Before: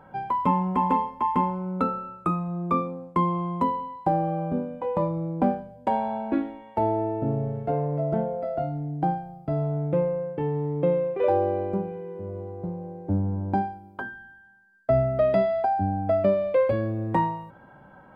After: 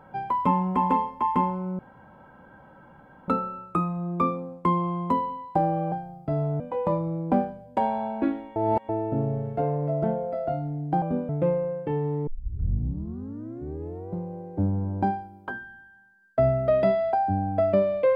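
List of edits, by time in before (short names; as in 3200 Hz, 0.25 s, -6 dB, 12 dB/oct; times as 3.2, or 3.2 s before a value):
1.79 insert room tone 1.49 s
4.43–4.7 swap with 9.12–9.8
6.66–6.99 reverse
10.78 tape start 1.85 s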